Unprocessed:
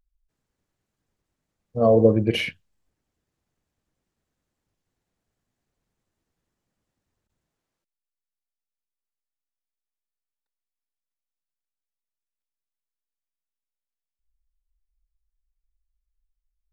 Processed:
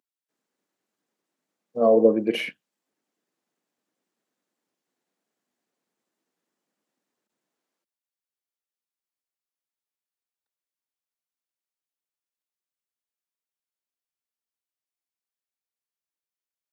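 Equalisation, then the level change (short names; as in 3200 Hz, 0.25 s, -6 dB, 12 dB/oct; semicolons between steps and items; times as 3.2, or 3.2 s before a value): HPF 220 Hz 24 dB/oct; dynamic EQ 4500 Hz, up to -6 dB, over -41 dBFS, Q 0.73; 0.0 dB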